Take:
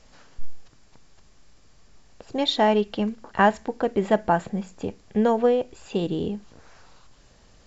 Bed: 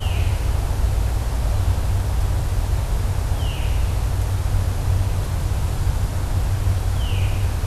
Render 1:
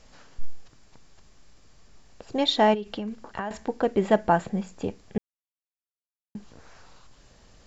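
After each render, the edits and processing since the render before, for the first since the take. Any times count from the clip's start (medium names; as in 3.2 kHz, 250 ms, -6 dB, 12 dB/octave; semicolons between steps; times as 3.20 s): 2.74–3.51 s: compression 16:1, threshold -27 dBFS; 5.18–6.35 s: mute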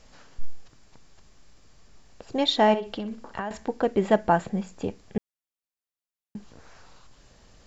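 2.62–3.43 s: flutter echo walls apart 11 m, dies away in 0.29 s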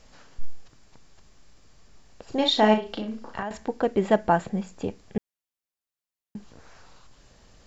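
2.24–3.43 s: doubling 37 ms -4.5 dB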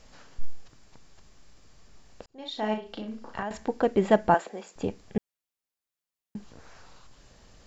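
2.26–3.62 s: fade in linear; 4.34–4.76 s: high-pass 340 Hz 24 dB/octave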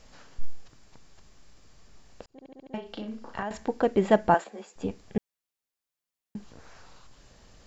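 2.32 s: stutter in place 0.07 s, 6 plays; 4.44–4.91 s: three-phase chorus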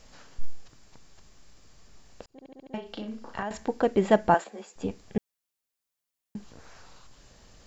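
treble shelf 5.5 kHz +4 dB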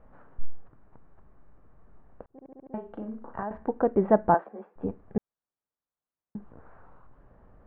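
low-pass 1.4 kHz 24 dB/octave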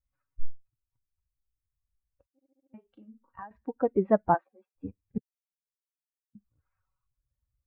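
expander on every frequency bin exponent 2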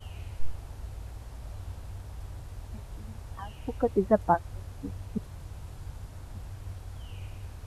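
add bed -20.5 dB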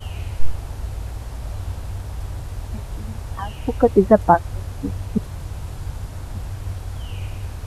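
trim +11.5 dB; peak limiter -1 dBFS, peak gain reduction 2 dB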